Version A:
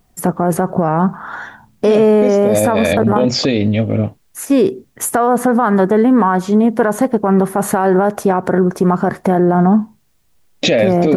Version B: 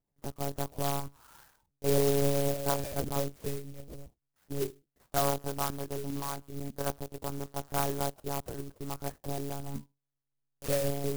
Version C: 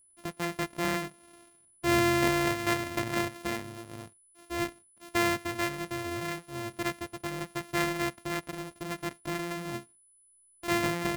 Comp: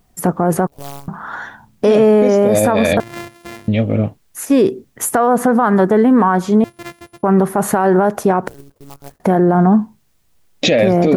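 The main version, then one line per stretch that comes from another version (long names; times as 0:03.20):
A
0:00.67–0:01.08: punch in from B
0:03.00–0:03.68: punch in from C
0:06.64–0:07.23: punch in from C
0:08.48–0:09.20: punch in from B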